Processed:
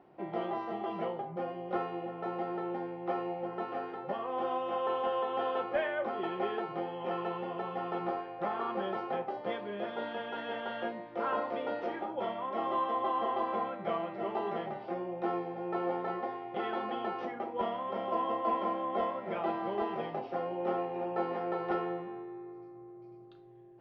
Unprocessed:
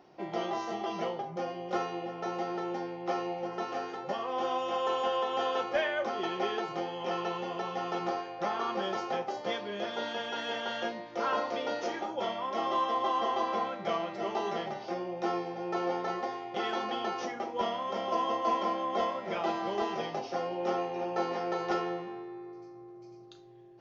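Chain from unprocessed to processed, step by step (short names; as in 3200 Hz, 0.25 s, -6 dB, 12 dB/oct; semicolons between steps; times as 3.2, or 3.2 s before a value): air absorption 460 m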